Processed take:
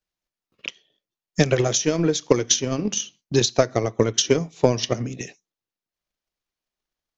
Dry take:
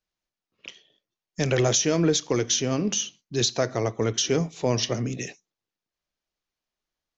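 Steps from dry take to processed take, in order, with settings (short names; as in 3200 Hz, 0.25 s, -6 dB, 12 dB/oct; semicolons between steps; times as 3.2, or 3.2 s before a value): transient shaper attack +12 dB, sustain -2 dB; gain -1.5 dB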